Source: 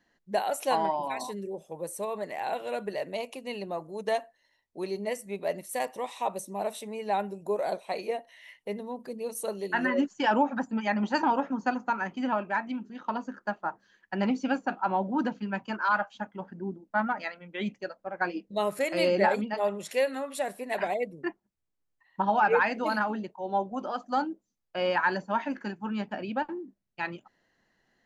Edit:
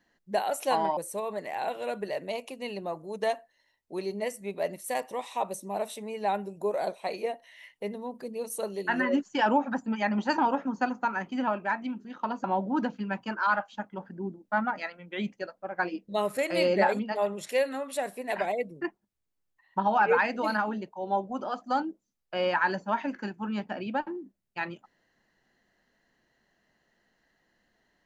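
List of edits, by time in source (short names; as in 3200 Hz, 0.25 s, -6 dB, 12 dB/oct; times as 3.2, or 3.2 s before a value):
0.97–1.82 cut
13.29–14.86 cut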